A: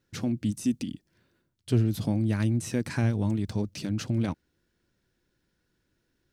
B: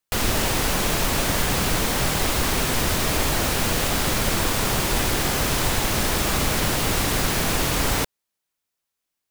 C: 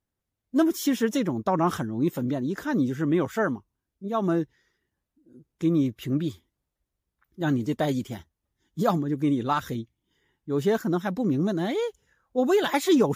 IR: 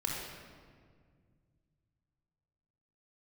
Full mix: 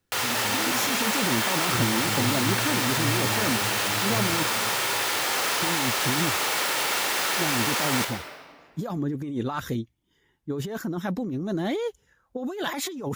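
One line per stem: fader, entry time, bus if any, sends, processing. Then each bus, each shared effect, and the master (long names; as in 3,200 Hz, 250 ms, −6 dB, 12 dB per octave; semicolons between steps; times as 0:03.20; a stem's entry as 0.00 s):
−6.0 dB, 0.00 s, bus A, send −9.5 dB, no processing
+2.0 dB, 0.00 s, bus A, send −9.5 dB, Bessel high-pass filter 830 Hz, order 2
−1.0 dB, 0.00 s, no bus, no send, compressor whose output falls as the input rises −28 dBFS
bus A: 0.0 dB, high-shelf EQ 6,500 Hz −12 dB; brickwall limiter −22 dBFS, peak gain reduction 9 dB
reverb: on, RT60 1.9 s, pre-delay 24 ms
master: no processing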